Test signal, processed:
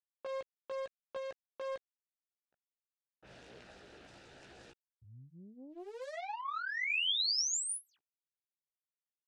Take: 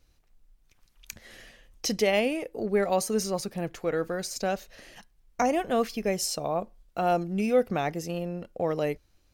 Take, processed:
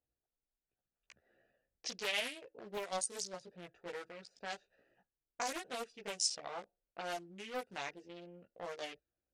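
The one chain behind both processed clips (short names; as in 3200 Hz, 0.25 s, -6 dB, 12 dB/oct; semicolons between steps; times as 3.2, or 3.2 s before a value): Wiener smoothing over 41 samples; chorus voices 6, 0.66 Hz, delay 16 ms, depth 1.5 ms; low-pass opened by the level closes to 1200 Hz, open at -24.5 dBFS; steep low-pass 10000 Hz 96 dB/oct; in parallel at +2 dB: compressor, threshold -35 dBFS; on the sum: differentiator; Doppler distortion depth 0.44 ms; gain +5 dB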